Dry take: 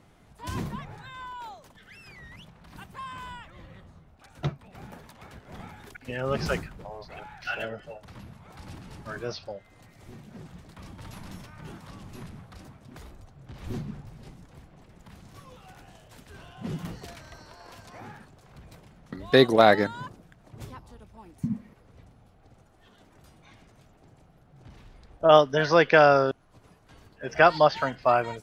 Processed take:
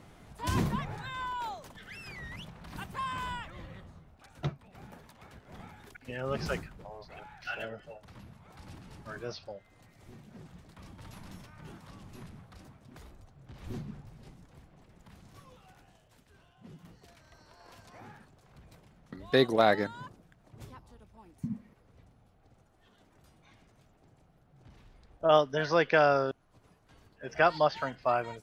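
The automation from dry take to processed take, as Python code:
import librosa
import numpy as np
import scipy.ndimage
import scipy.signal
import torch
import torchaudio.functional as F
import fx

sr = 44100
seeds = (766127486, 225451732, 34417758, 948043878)

y = fx.gain(x, sr, db=fx.line((3.39, 3.5), (4.65, -5.5), (15.4, -5.5), (16.79, -18.0), (17.69, -6.5)))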